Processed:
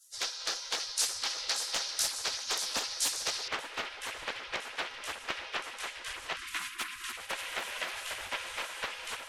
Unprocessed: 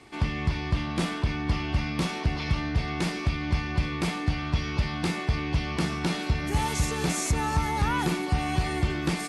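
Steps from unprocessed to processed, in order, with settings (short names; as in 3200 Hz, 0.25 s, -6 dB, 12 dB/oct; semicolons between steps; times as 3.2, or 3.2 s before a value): spectral gate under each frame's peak -30 dB weak; echo with dull and thin repeats by turns 0.292 s, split 2000 Hz, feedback 77%, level -5 dB; 6.36–7.17 spectral delete 370–970 Hz; resonant high shelf 3600 Hz +6 dB, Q 1.5, from 3.48 s -8 dB; Doppler distortion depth 0.52 ms; gain +8.5 dB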